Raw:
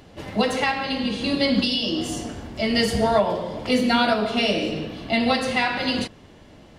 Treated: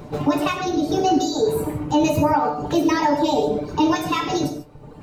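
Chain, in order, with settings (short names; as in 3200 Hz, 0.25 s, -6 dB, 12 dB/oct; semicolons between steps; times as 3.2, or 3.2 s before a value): tilt shelf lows +9 dB, about 1200 Hz; reverb removal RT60 1.3 s; high shelf 7600 Hz +11.5 dB; in parallel at +3 dB: compressor, threshold -27 dBFS, peak gain reduction 17.5 dB; on the sum: resonator 110 Hz, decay 0.16 s, harmonics all, mix 80%; speed mistake 33 rpm record played at 45 rpm; notch 700 Hz, Q 12; non-linear reverb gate 0.17 s flat, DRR 6.5 dB; maximiser +10.5 dB; gain -8.5 dB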